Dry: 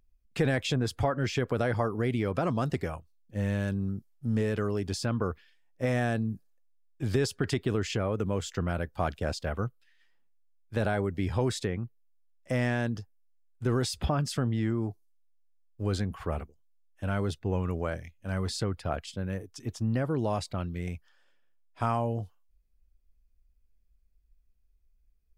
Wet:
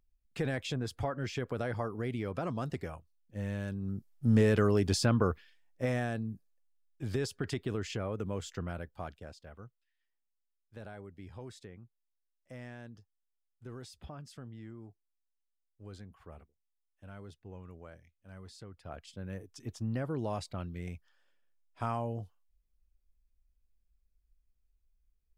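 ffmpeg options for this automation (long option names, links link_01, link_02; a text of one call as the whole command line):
ffmpeg -i in.wav -af "volume=16dB,afade=type=in:start_time=3.81:duration=0.48:silence=0.298538,afade=type=out:start_time=4.97:duration=1.12:silence=0.316228,afade=type=out:start_time=8.5:duration=0.84:silence=0.251189,afade=type=in:start_time=18.71:duration=0.77:silence=0.237137" out.wav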